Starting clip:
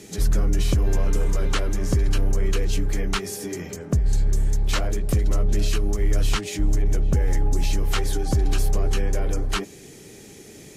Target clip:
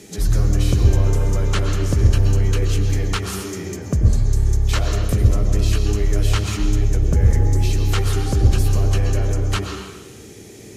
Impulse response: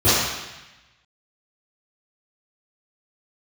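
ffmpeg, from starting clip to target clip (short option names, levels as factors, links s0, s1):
-filter_complex "[0:a]asplit=2[s0][s1];[1:a]atrim=start_sample=2205,adelay=85[s2];[s1][s2]afir=irnorm=-1:irlink=0,volume=0.0473[s3];[s0][s3]amix=inputs=2:normalize=0,volume=1.12"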